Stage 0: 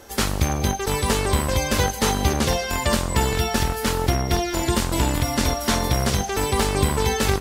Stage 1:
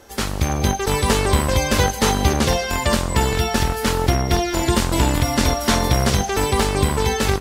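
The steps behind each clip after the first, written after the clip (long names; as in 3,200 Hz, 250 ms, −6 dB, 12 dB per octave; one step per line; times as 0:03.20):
high-shelf EQ 9,000 Hz −4 dB
automatic gain control gain up to 8 dB
level −1.5 dB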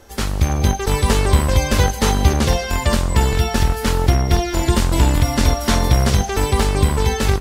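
low-shelf EQ 94 Hz +9.5 dB
level −1 dB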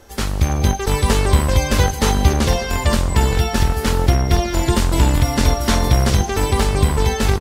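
slap from a distant wall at 260 metres, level −13 dB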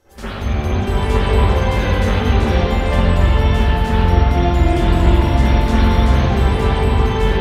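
convolution reverb RT60 2.8 s, pre-delay 45 ms, DRR −16 dB
level −14.5 dB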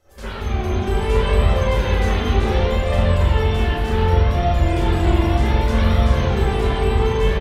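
flanger 0.67 Hz, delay 1.5 ms, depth 1.4 ms, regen +39%
double-tracking delay 36 ms −5.5 dB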